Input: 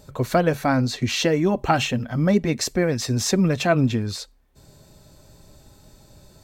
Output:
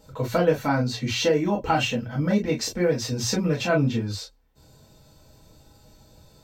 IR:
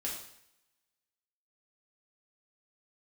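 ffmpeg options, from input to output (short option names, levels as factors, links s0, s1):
-filter_complex "[0:a]equalizer=f=9800:w=2.5:g=-8,bandreject=f=60:t=h:w=6,bandreject=f=120:t=h:w=6[s0];[1:a]atrim=start_sample=2205,atrim=end_sample=3969,asetrate=74970,aresample=44100[s1];[s0][s1]afir=irnorm=-1:irlink=0,volume=1.12"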